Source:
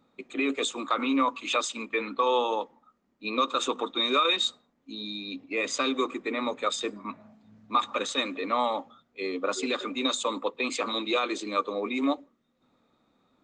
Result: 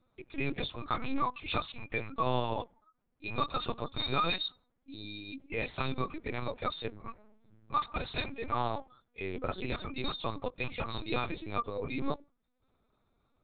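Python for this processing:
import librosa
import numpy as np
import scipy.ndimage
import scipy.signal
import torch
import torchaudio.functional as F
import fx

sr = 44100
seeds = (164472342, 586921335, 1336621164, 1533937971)

y = fx.lpc_vocoder(x, sr, seeds[0], excitation='pitch_kept', order=8)
y = y * librosa.db_to_amplitude(-5.5)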